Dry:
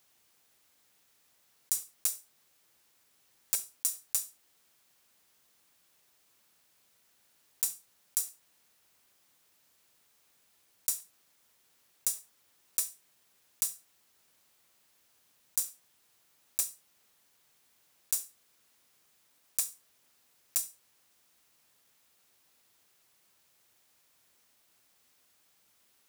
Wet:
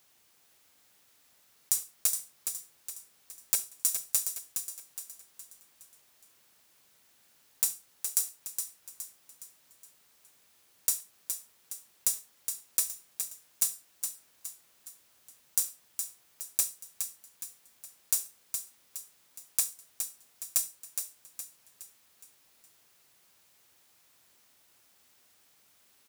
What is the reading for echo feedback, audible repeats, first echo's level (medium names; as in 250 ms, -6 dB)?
45%, 5, -7.0 dB